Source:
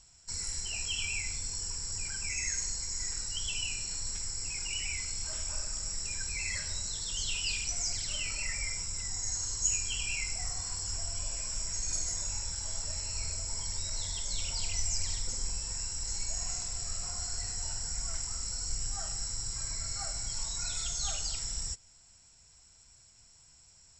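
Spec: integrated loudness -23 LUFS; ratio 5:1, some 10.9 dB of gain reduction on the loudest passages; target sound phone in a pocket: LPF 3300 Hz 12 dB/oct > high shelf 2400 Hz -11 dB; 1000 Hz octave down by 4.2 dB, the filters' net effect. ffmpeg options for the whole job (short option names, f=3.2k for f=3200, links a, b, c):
-af "equalizer=f=1k:t=o:g=-3.5,acompressor=threshold=-37dB:ratio=5,lowpass=3.3k,highshelf=f=2.4k:g=-11,volume=28dB"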